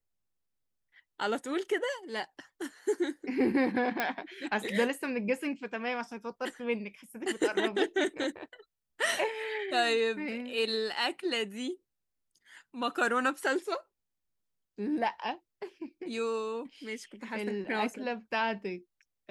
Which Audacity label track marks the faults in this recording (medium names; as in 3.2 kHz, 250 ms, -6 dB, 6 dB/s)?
4.000000	4.000000	pop -15 dBFS